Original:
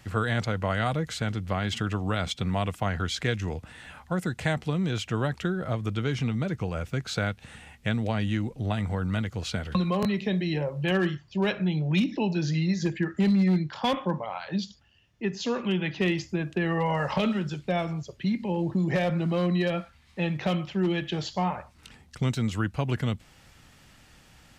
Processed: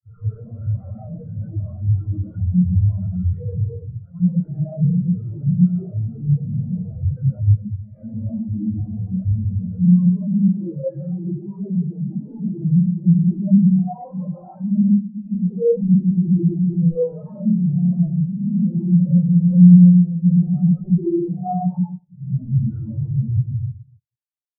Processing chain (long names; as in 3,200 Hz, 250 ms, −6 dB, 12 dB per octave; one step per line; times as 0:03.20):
random phases in long frames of 200 ms
low-pass filter 1,500 Hz 6 dB per octave
treble cut that deepens with the level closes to 570 Hz, closed at −21.5 dBFS
low-shelf EQ 310 Hz −6.5 dB
fuzz pedal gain 52 dB, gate −46 dBFS
0:09.80–0:12.14: low-shelf EQ 140 Hz −7 dB
convolution reverb RT60 1.3 s, pre-delay 101 ms, DRR −9 dB
leveller curve on the samples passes 5
every bin expanded away from the loudest bin 4 to 1
level −16 dB